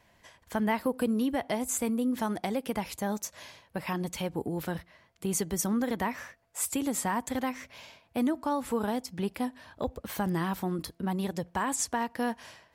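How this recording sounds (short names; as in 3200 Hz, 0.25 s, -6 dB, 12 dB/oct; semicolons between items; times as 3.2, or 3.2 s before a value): noise floor -66 dBFS; spectral tilt -5.0 dB/oct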